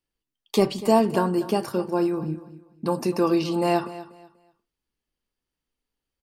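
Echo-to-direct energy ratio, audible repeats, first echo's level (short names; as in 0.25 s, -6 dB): -15.5 dB, 2, -16.0 dB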